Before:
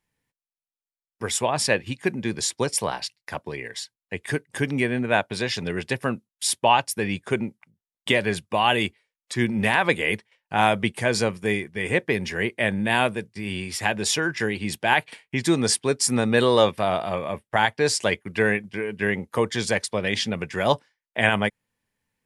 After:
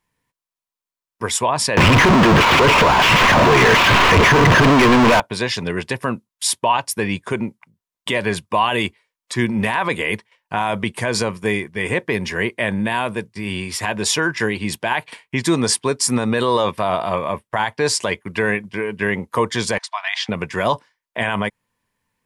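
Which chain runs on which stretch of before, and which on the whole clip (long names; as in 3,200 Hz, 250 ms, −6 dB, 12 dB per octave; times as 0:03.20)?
0:01.77–0:05.20: linear delta modulator 16 kbit/s, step −15.5 dBFS + leveller curve on the samples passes 5
0:19.78–0:20.29: linear-phase brick-wall high-pass 640 Hz + high-frequency loss of the air 97 metres
whole clip: parametric band 1,000 Hz +9 dB 0.42 octaves; notch filter 830 Hz, Q 12; brickwall limiter −12 dBFS; level +4.5 dB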